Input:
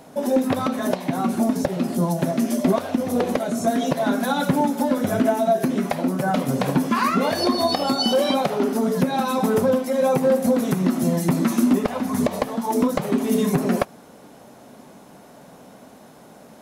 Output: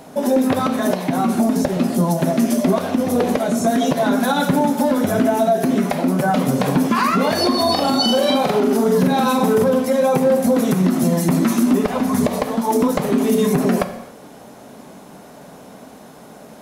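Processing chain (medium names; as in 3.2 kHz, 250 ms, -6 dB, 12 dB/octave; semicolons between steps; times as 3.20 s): 7.60–9.64 s: doubling 43 ms -4.5 dB; gated-style reverb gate 310 ms falling, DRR 11 dB; loudness maximiser +12 dB; trim -7 dB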